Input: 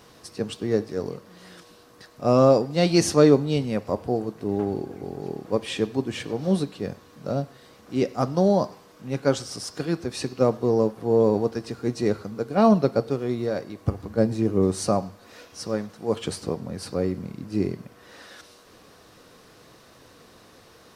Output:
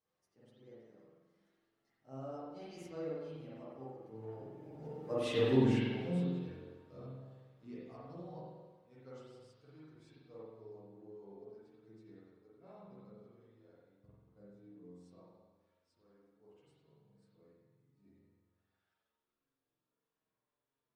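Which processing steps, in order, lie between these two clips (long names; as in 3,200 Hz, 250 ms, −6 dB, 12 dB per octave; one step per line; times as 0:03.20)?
source passing by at 0:05.46, 27 m/s, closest 3.5 metres
spring reverb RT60 1.3 s, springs 45 ms, chirp 50 ms, DRR −8 dB
multi-voice chorus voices 4, 0.18 Hz, delay 11 ms, depth 4.7 ms
level −5.5 dB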